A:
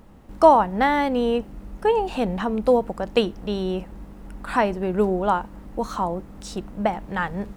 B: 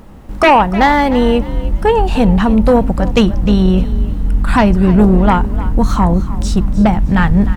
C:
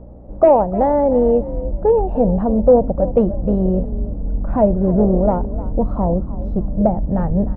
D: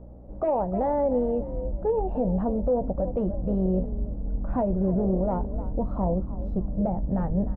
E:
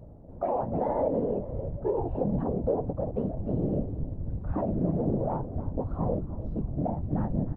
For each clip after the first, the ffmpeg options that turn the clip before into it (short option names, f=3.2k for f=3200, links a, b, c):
-filter_complex "[0:a]asubboost=boost=7:cutoff=170,aeval=exprs='0.75*sin(PI/2*2.51*val(0)/0.75)':c=same,asplit=4[a][b][c][d];[b]adelay=304,afreqshift=41,volume=-15.5dB[e];[c]adelay=608,afreqshift=82,volume=-25.4dB[f];[d]adelay=912,afreqshift=123,volume=-35.3dB[g];[a][e][f][g]amix=inputs=4:normalize=0,volume=-1dB"
-af "asoftclip=type=hard:threshold=-4dB,lowpass=f=590:t=q:w=4,aeval=exprs='val(0)+0.0282*(sin(2*PI*60*n/s)+sin(2*PI*2*60*n/s)/2+sin(2*PI*3*60*n/s)/3+sin(2*PI*4*60*n/s)/4+sin(2*PI*5*60*n/s)/5)':c=same,volume=-7.5dB"
-filter_complex "[0:a]alimiter=limit=-10.5dB:level=0:latency=1:release=47,asplit=2[a][b];[b]adelay=16,volume=-12dB[c];[a][c]amix=inputs=2:normalize=0,volume=-7.5dB"
-af "afftfilt=real='hypot(re,im)*cos(2*PI*random(0))':imag='hypot(re,im)*sin(2*PI*random(1))':win_size=512:overlap=0.75,volume=2.5dB"